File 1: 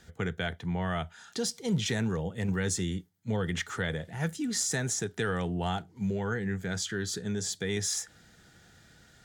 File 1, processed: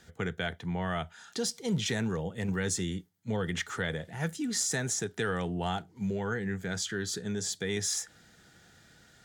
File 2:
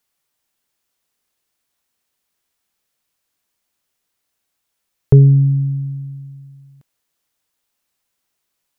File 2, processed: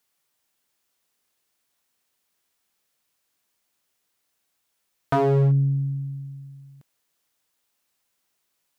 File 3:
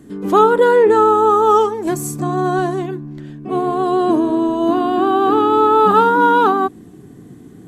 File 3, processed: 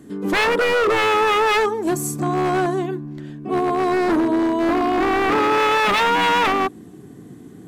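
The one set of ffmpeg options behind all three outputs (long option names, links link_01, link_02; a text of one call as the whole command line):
ffmpeg -i in.wav -af "aeval=exprs='0.266*(abs(mod(val(0)/0.266+3,4)-2)-1)':channel_layout=same,acontrast=49,lowshelf=frequency=95:gain=-6.5,volume=-6dB" out.wav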